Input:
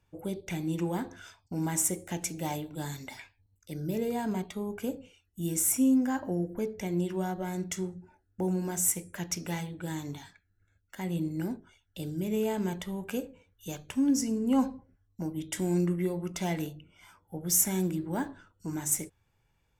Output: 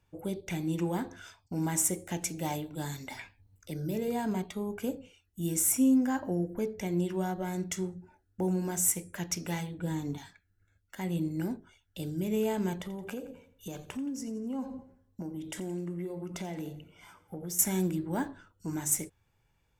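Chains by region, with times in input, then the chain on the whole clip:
0:03.10–0:04.08: hum removal 59.16 Hz, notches 9 + multiband upward and downward compressor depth 40%
0:09.78–0:10.18: tilt shelving filter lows +5 dB, about 640 Hz + comb filter 4.2 ms, depth 37%
0:12.80–0:17.59: parametric band 400 Hz +6 dB 2.7 octaves + downward compressor 4 to 1, threshold −36 dBFS + repeating echo 86 ms, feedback 49%, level −16 dB
whole clip: no processing

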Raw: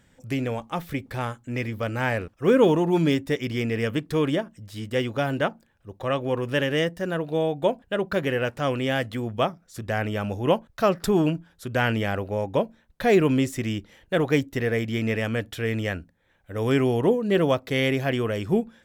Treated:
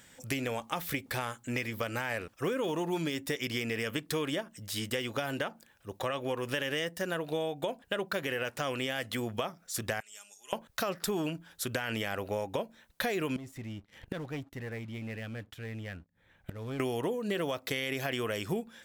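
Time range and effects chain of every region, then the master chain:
0:10.00–0:10.53: resonant band-pass 7,500 Hz, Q 4.7 + comb filter 4.9 ms, depth 58%
0:13.36–0:16.80: bass and treble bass +12 dB, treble −9 dB + leveller curve on the samples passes 2 + gate with flip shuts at −22 dBFS, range −25 dB
whole clip: spectral tilt +2.5 dB per octave; brickwall limiter −16 dBFS; downward compressor 5 to 1, threshold −34 dBFS; level +3.5 dB

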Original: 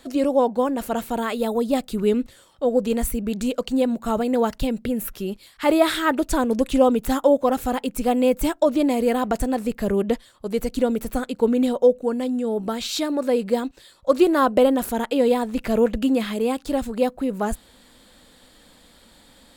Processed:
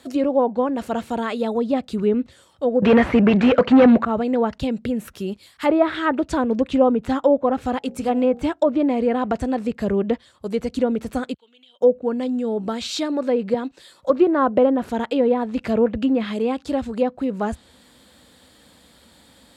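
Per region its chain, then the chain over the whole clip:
0:02.82–0:04.05: high shelf with overshoot 1,500 Hz +8.5 dB, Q 1.5 + mid-hump overdrive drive 31 dB, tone 1,800 Hz, clips at −3.5 dBFS
0:07.78–0:08.44: mu-law and A-law mismatch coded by A + hum removal 59.63 Hz, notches 14
0:11.34–0:11.81: resonant band-pass 3,200 Hz, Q 9.7 + downward compressor 5 to 1, threshold −48 dBFS
0:13.54–0:14.10: parametric band 78 Hz −10.5 dB 1.5 octaves + multiband upward and downward compressor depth 40%
whole clip: high-pass filter 65 Hz 24 dB per octave; treble cut that deepens with the level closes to 1,700 Hz, closed at −14.5 dBFS; low-shelf EQ 100 Hz +6.5 dB

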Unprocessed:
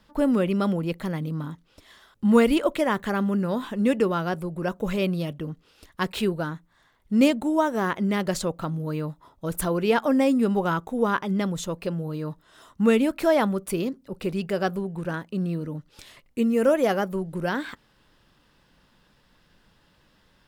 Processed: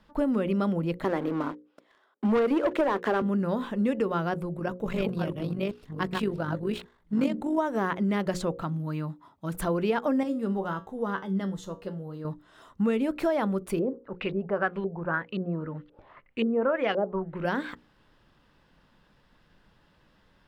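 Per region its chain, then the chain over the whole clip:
0:01.04–0:03.22: high-pass filter 290 Hz 24 dB per octave + high-shelf EQ 2,300 Hz −12 dB + leveller curve on the samples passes 3
0:04.57–0:07.58: delay that plays each chunk backwards 381 ms, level −2 dB + amplitude modulation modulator 48 Hz, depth 35%
0:08.62–0:09.54: high-pass filter 120 Hz + parametric band 480 Hz −11 dB 0.61 octaves
0:10.23–0:12.25: notch filter 2,400 Hz, Q 5.3 + tuned comb filter 96 Hz, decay 0.25 s, mix 70%
0:13.79–0:17.45: tilt shelving filter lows −4 dB, about 790 Hz + auto-filter low-pass saw up 1.9 Hz 440–3,600 Hz
whole clip: high-shelf EQ 3,900 Hz −10.5 dB; mains-hum notches 60/120/180/240/300/360/420/480/540 Hz; downward compressor 6 to 1, threshold −22 dBFS

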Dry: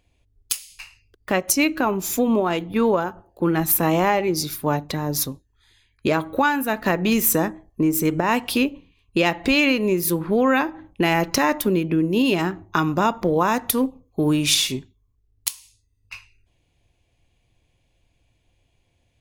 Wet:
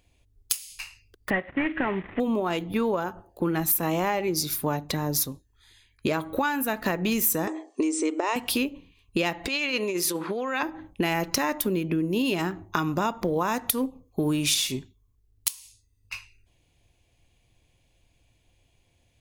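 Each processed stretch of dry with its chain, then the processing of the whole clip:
0:01.30–0:02.20: variable-slope delta modulation 16 kbit/s + parametric band 1,900 Hz +13 dB 0.31 octaves
0:07.47–0:08.36: linear-phase brick-wall band-pass 260–9,300 Hz + parametric band 1,600 Hz −9 dB 0.21 octaves + multiband upward and downward compressor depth 70%
0:09.47–0:10.63: compressor whose output falls as the input rises −21 dBFS, ratio −0.5 + band-pass filter 270–6,800 Hz + spectral tilt +1.5 dB per octave
whole clip: high-shelf EQ 4,900 Hz +5.5 dB; downward compressor 2.5 to 1, threshold −25 dBFS

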